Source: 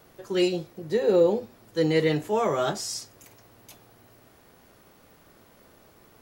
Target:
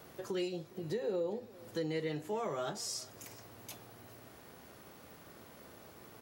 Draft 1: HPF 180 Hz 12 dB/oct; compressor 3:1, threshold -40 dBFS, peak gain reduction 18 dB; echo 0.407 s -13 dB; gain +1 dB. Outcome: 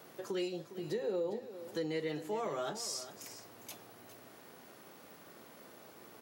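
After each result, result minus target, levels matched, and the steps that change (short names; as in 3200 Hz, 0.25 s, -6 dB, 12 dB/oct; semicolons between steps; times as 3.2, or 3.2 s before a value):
echo-to-direct +8.5 dB; 125 Hz band -4.0 dB
change: echo 0.407 s -21.5 dB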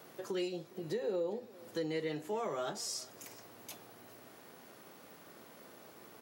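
125 Hz band -4.0 dB
change: HPF 61 Hz 12 dB/oct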